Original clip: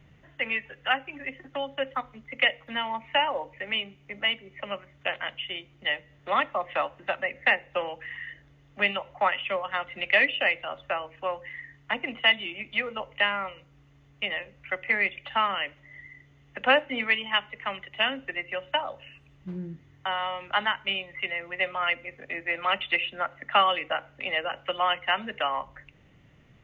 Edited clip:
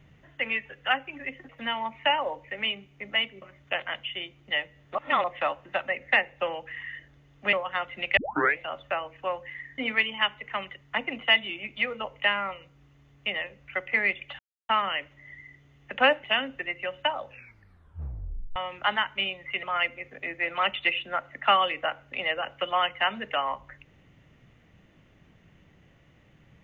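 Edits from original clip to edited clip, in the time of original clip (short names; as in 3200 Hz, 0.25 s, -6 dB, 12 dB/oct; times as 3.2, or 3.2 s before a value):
1.49–2.58 cut
4.51–4.76 cut
6.29–6.58 reverse
8.87–9.52 cut
10.16 tape start 0.41 s
15.35 insert silence 0.30 s
16.9–17.93 move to 11.77
18.95 tape stop 1.30 s
21.32–21.7 cut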